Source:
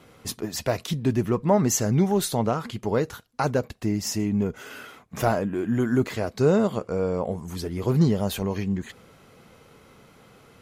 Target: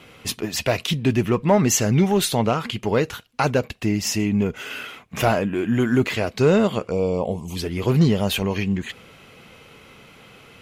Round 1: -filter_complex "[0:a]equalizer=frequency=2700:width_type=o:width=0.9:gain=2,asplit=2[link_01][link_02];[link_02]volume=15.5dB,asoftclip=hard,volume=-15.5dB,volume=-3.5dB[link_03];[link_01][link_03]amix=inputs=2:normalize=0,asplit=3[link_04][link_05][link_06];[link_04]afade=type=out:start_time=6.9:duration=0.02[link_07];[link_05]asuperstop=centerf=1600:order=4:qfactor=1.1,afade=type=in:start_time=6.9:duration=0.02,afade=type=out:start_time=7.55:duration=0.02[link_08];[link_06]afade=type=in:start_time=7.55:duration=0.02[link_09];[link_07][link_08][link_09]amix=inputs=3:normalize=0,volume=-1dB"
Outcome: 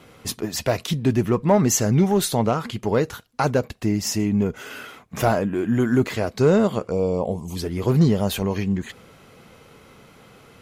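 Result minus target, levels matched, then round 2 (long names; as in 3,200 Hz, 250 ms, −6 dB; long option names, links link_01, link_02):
2,000 Hz band −3.5 dB
-filter_complex "[0:a]equalizer=frequency=2700:width_type=o:width=0.9:gain=10.5,asplit=2[link_01][link_02];[link_02]volume=15.5dB,asoftclip=hard,volume=-15.5dB,volume=-3.5dB[link_03];[link_01][link_03]amix=inputs=2:normalize=0,asplit=3[link_04][link_05][link_06];[link_04]afade=type=out:start_time=6.9:duration=0.02[link_07];[link_05]asuperstop=centerf=1600:order=4:qfactor=1.1,afade=type=in:start_time=6.9:duration=0.02,afade=type=out:start_time=7.55:duration=0.02[link_08];[link_06]afade=type=in:start_time=7.55:duration=0.02[link_09];[link_07][link_08][link_09]amix=inputs=3:normalize=0,volume=-1dB"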